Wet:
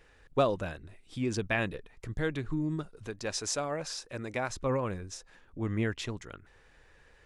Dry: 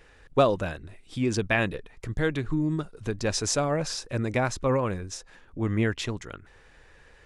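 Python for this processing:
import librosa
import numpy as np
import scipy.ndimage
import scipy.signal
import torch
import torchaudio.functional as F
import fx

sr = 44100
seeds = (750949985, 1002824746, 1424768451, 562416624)

y = fx.low_shelf(x, sr, hz=260.0, db=-9.5, at=(3.06, 4.5))
y = F.gain(torch.from_numpy(y), -5.5).numpy()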